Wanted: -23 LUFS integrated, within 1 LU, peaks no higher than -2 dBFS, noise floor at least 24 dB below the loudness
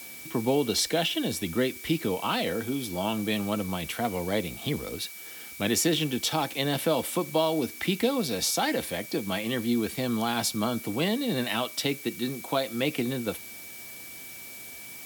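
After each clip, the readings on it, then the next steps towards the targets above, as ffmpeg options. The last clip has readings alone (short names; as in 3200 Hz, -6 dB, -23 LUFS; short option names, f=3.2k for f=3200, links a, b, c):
steady tone 2300 Hz; tone level -46 dBFS; noise floor -43 dBFS; noise floor target -52 dBFS; loudness -28.0 LUFS; peak -12.5 dBFS; loudness target -23.0 LUFS
-> -af "bandreject=f=2.3k:w=30"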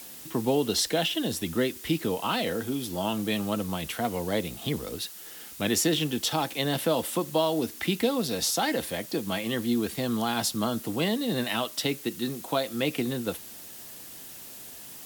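steady tone none; noise floor -44 dBFS; noise floor target -53 dBFS
-> -af "afftdn=nr=9:nf=-44"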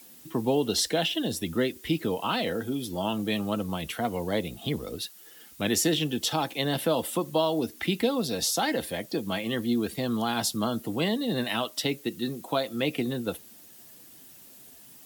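noise floor -51 dBFS; noise floor target -53 dBFS
-> -af "afftdn=nr=6:nf=-51"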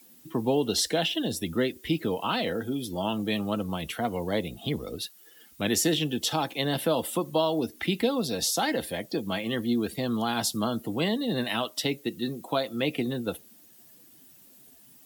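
noise floor -55 dBFS; loudness -28.5 LUFS; peak -13.0 dBFS; loudness target -23.0 LUFS
-> -af "volume=5.5dB"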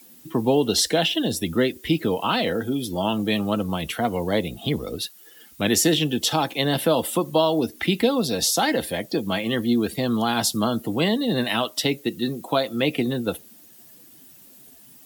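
loudness -23.0 LUFS; peak -7.5 dBFS; noise floor -49 dBFS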